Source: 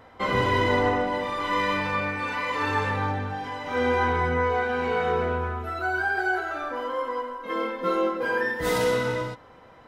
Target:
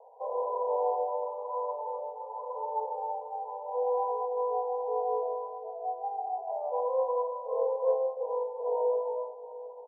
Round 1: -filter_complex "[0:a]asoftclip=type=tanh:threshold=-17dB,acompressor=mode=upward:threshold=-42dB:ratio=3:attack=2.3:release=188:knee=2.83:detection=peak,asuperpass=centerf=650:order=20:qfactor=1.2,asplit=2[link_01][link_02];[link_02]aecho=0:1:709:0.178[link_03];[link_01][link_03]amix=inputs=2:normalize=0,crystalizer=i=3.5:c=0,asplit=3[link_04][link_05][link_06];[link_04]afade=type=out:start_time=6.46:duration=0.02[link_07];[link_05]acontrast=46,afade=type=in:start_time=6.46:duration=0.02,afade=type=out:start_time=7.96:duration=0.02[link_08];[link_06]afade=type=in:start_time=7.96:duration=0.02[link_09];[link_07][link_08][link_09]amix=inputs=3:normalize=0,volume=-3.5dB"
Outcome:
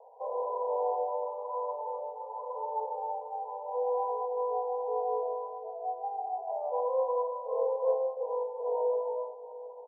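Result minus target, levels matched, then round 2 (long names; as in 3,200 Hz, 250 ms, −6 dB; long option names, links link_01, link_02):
soft clipping: distortion +17 dB
-filter_complex "[0:a]asoftclip=type=tanh:threshold=-7dB,acompressor=mode=upward:threshold=-42dB:ratio=3:attack=2.3:release=188:knee=2.83:detection=peak,asuperpass=centerf=650:order=20:qfactor=1.2,asplit=2[link_01][link_02];[link_02]aecho=0:1:709:0.178[link_03];[link_01][link_03]amix=inputs=2:normalize=0,crystalizer=i=3.5:c=0,asplit=3[link_04][link_05][link_06];[link_04]afade=type=out:start_time=6.46:duration=0.02[link_07];[link_05]acontrast=46,afade=type=in:start_time=6.46:duration=0.02,afade=type=out:start_time=7.96:duration=0.02[link_08];[link_06]afade=type=in:start_time=7.96:duration=0.02[link_09];[link_07][link_08][link_09]amix=inputs=3:normalize=0,volume=-3.5dB"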